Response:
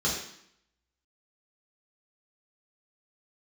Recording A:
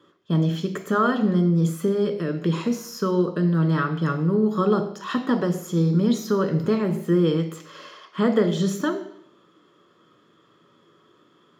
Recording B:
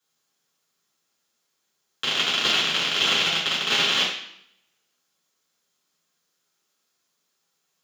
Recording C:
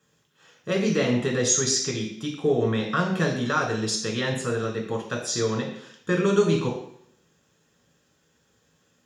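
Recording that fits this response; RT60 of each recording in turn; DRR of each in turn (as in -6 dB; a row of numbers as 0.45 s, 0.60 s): B; 0.70 s, 0.70 s, 0.70 s; 6.5 dB, -6.5 dB, 0.0 dB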